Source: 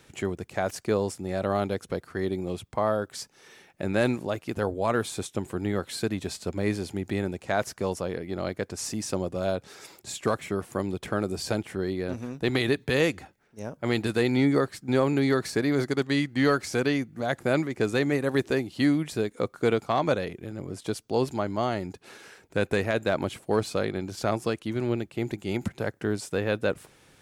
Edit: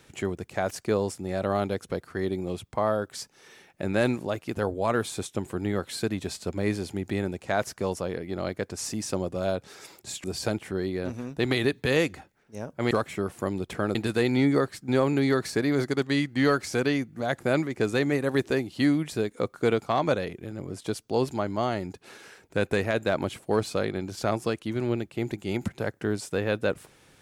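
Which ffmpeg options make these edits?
-filter_complex "[0:a]asplit=4[a][b][c][d];[a]atrim=end=10.242[e];[b]atrim=start=11.278:end=13.952[f];[c]atrim=start=10.238:end=11.282[g];[d]atrim=start=13.948[h];[e][f]acrossfade=d=0.004:c1=hsin:c2=hsin[i];[i][g]acrossfade=d=0.004:c1=hsin:c2=hsin[j];[j][h]acrossfade=d=0.004:c1=hsin:c2=hsin"

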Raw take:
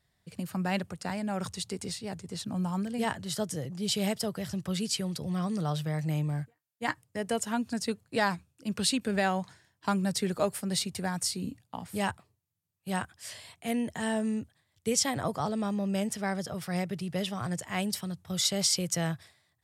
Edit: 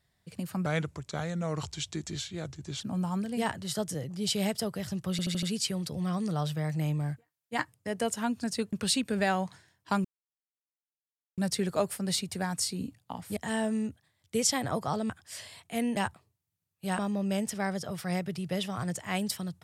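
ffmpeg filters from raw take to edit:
-filter_complex "[0:a]asplit=13[a][b][c][d][e][f][g][h][i][j][k][l][m];[a]atrim=end=0.664[n];[b]atrim=start=0.66:end=2.42,asetpts=PTS-STARTPTS,asetrate=36162,aresample=44100[o];[c]atrim=start=2.416:end=4.802[p];[d]atrim=start=4.718:end=4.802[q];[e]atrim=start=4.718:end=4.802[r];[f]atrim=start=4.718:end=4.802[s];[g]atrim=start=4.718:end=8.022[t];[h]atrim=start=8.688:end=10.01,asetpts=PTS-STARTPTS,afade=t=out:st=1.318:d=0.004:c=hsin,apad=pad_dur=1.33[u];[i]atrim=start=10.01:end=12.002,asetpts=PTS-STARTPTS,afade=t=in:d=0.004:c=hsin[v];[j]atrim=start=13.888:end=15.622[w];[k]atrim=start=13.018:end=13.892[x];[l]atrim=start=11.998:end=13.022[y];[m]atrim=start=15.618[z];[n][o]acrossfade=d=0.004:c1=hsin:c2=hsin[aa];[aa][p]acrossfade=d=0.004:c1=hsin:c2=hsin[ab];[ab][q]acrossfade=d=0.004:c1=hsin:c2=hsin[ac];[ac][r]acrossfade=d=0.004:c1=hsin:c2=hsin[ad];[ad][s]acrossfade=d=0.004:c1=hsin:c2=hsin[ae];[ae][t]acrossfade=d=0.004:c1=hsin:c2=hsin[af];[u][v]concat=n=2:v=0:a=1[ag];[af][ag]acrossfade=d=0.004:c1=hsin:c2=hsin[ah];[ah][w]acrossfade=d=0.004:c1=hsin:c2=hsin[ai];[ai][x]acrossfade=d=0.004:c1=hsin:c2=hsin[aj];[aj][y]acrossfade=d=0.004:c1=hsin:c2=hsin[ak];[ak][z]acrossfade=d=0.004:c1=hsin:c2=hsin"

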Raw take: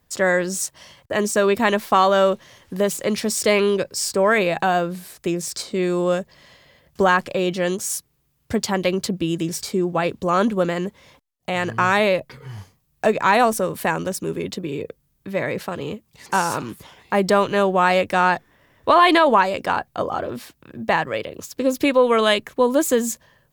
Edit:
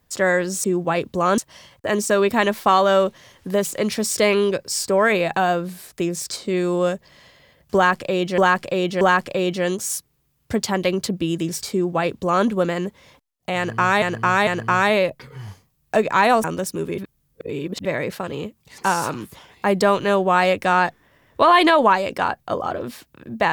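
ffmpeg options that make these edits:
-filter_complex "[0:a]asplit=10[a][b][c][d][e][f][g][h][i][j];[a]atrim=end=0.642[k];[b]atrim=start=9.718:end=10.462[l];[c]atrim=start=0.638:end=7.642[m];[d]atrim=start=7.008:end=7.642[n];[e]atrim=start=7.008:end=12.022[o];[f]atrim=start=11.568:end=12.022[p];[g]atrim=start=11.568:end=13.542[q];[h]atrim=start=13.918:end=14.462[r];[i]atrim=start=14.458:end=15.332,asetpts=PTS-STARTPTS,areverse[s];[j]atrim=start=15.328[t];[k][l]acrossfade=d=0.004:c1=hsin:c2=hsin[u];[u][m]acrossfade=d=0.004:c1=hsin:c2=hsin[v];[v][n]acrossfade=d=0.004:c1=hsin:c2=hsin[w];[w][o]acrossfade=d=0.004:c1=hsin:c2=hsin[x];[x][p]acrossfade=d=0.004:c1=hsin:c2=hsin[y];[y][q]acrossfade=d=0.004:c1=hsin:c2=hsin[z];[z][r]acrossfade=d=0.004:c1=hsin:c2=hsin[aa];[aa][s]acrossfade=d=0.004:c1=hsin:c2=hsin[ab];[ab][t]acrossfade=d=0.004:c1=hsin:c2=hsin"

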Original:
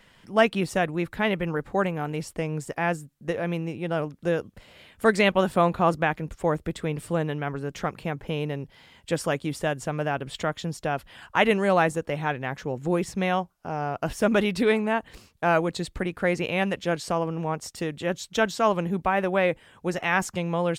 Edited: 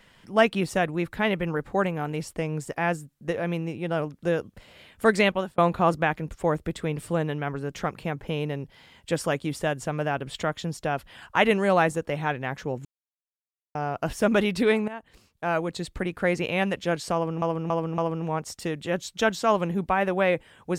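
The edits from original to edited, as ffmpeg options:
-filter_complex "[0:a]asplit=8[a][b][c][d][e][f][g][h];[a]atrim=end=5.58,asetpts=PTS-STARTPTS,afade=t=out:st=5.22:d=0.36[i];[b]atrim=start=5.58:end=12.85,asetpts=PTS-STARTPTS,afade=t=in:d=0.004:c=hsin,afade=t=out:st=7.266:d=0.004:c=hsin[j];[c]atrim=start=12.85:end=13.75,asetpts=PTS-STARTPTS,volume=0[k];[d]atrim=start=13.75:end=14.88,asetpts=PTS-STARTPTS,afade=t=in:d=0.004:c=hsin,afade=t=out:st=1.126:d=0.004:c=hsin:silence=0.188365[l];[e]atrim=start=14.88:end=17.422,asetpts=PTS-STARTPTS,afade=t=in:d=1.24:silence=0.188365[m];[f]atrim=start=17.138:end=17.422[n];[g]atrim=start=17.138:end=17.422[o];[h]atrim=start=17.138[p];[i][j][k][l][m]concat=n=5:v=0:a=1[q];[q][n]acrossfade=d=0.004:c1=hsin:c2=hsin[r];[r][o]acrossfade=d=0.004:c1=hsin:c2=hsin[s];[s][p]acrossfade=d=0.004:c1=hsin:c2=hsin"

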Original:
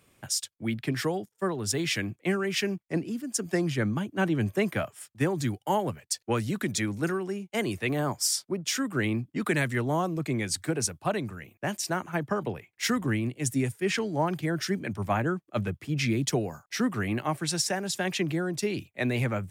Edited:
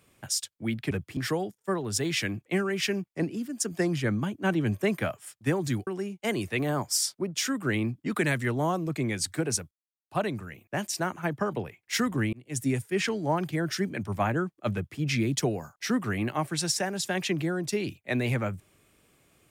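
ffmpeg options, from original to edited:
-filter_complex "[0:a]asplit=6[a][b][c][d][e][f];[a]atrim=end=0.912[g];[b]atrim=start=15.638:end=15.902[h];[c]atrim=start=0.908:end=5.612[i];[d]atrim=start=7.168:end=11.01,asetpts=PTS-STARTPTS,afade=t=out:st=3.838:d=0.004:c=hsin,apad=pad_dur=0.4[j];[e]atrim=start=11.01:end=13.23,asetpts=PTS-STARTPTS,afade=t=in:d=0.004:c=hsin,afade=t=out:st=2.216:d=0.004:c=hsin[k];[f]atrim=start=13.23,asetpts=PTS-STARTPTS,afade=t=in:d=0.33[l];[g][h]acrossfade=d=0.004:c1=hsin:c2=hsin[m];[m][i]acrossfade=d=0.004:c1=hsin:c2=hsin[n];[j][k][l]concat=n=3:v=0:a=1[o];[n][o]acrossfade=d=0.004:c1=hsin:c2=hsin"

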